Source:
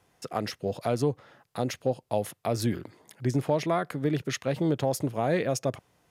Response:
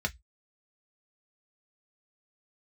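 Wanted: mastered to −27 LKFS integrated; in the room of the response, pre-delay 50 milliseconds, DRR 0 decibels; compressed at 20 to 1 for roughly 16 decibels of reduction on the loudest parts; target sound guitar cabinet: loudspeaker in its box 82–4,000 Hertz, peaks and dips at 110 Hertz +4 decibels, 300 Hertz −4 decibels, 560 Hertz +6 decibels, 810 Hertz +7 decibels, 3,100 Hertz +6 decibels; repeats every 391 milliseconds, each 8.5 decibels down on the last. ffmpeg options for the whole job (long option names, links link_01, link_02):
-filter_complex "[0:a]acompressor=threshold=-37dB:ratio=20,aecho=1:1:391|782|1173|1564:0.376|0.143|0.0543|0.0206,asplit=2[link_01][link_02];[1:a]atrim=start_sample=2205,adelay=50[link_03];[link_02][link_03]afir=irnorm=-1:irlink=0,volume=-6dB[link_04];[link_01][link_04]amix=inputs=2:normalize=0,highpass=82,equalizer=frequency=110:width_type=q:width=4:gain=4,equalizer=frequency=300:width_type=q:width=4:gain=-4,equalizer=frequency=560:width_type=q:width=4:gain=6,equalizer=frequency=810:width_type=q:width=4:gain=7,equalizer=frequency=3100:width_type=q:width=4:gain=6,lowpass=frequency=4000:width=0.5412,lowpass=frequency=4000:width=1.3066,volume=10.5dB"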